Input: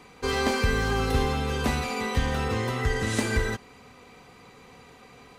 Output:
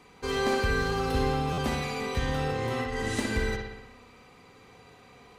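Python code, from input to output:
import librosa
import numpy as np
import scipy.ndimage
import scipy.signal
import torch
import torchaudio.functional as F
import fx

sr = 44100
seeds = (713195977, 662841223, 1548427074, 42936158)

p1 = fx.over_compress(x, sr, threshold_db=-29.0, ratio=-1.0, at=(2.49, 3.05))
p2 = p1 + fx.echo_bbd(p1, sr, ms=61, stages=2048, feedback_pct=64, wet_db=-4.5, dry=0)
p3 = fx.buffer_glitch(p2, sr, at_s=(1.52,), block=512, repeats=4)
y = F.gain(torch.from_numpy(p3), -5.0).numpy()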